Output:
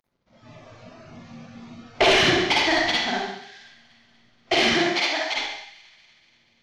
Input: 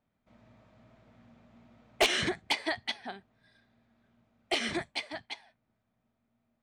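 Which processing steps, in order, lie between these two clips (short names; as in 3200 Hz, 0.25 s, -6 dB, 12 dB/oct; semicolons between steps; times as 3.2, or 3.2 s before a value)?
CVSD 32 kbps; reverb RT60 0.75 s, pre-delay 44 ms, DRR -4.5 dB; in parallel at +2 dB: compressor, threshold -34 dBFS, peak gain reduction 15 dB; on the sum: soft clip -14.5 dBFS, distortion -19 dB; 4.74–5.34 HPF 160 Hz -> 490 Hz 12 dB/oct; spectral noise reduction 11 dB; on a send: thin delay 0.24 s, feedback 60%, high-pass 1500 Hz, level -22 dB; on the sum: gain +5 dB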